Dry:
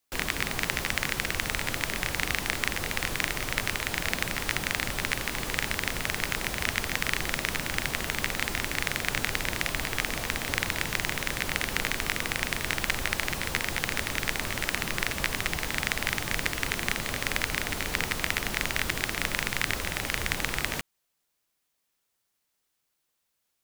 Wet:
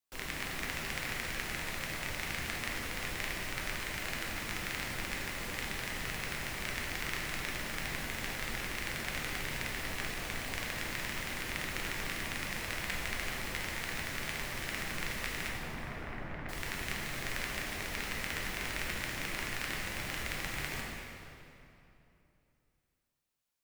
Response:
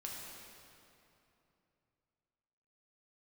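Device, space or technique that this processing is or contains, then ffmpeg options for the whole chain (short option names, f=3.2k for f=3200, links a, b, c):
stairwell: -filter_complex "[0:a]asettb=1/sr,asplit=3[a][b][c];[a]atrim=end=15.484[d];[b]atrim=start=15.48:end=16.49,asetpts=PTS-STARTPTS,afade=t=in:d=0.004:c=qsin,afade=t=out:st=1.006:d=0.004:c=qsin,lowpass=1.3k[e];[c]atrim=start=16.486[f];[d][e]acrossfade=d=0.004:c1=hsin:c2=qsin[g];[g][f]acrossfade=d=0.004:c1=qsin:c2=hsin[h];[1:a]atrim=start_sample=2205[i];[h][i]afir=irnorm=-1:irlink=0,volume=-6.5dB"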